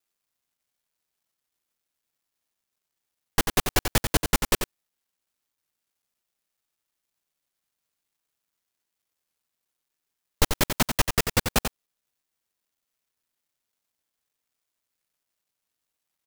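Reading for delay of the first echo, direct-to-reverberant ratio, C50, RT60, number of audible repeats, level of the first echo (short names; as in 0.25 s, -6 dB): 90 ms, none, none, none, 1, -7.0 dB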